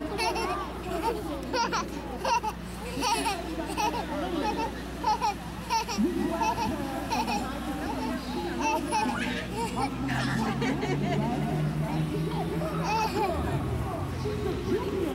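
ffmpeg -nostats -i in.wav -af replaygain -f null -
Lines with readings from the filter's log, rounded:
track_gain = +10.5 dB
track_peak = 0.125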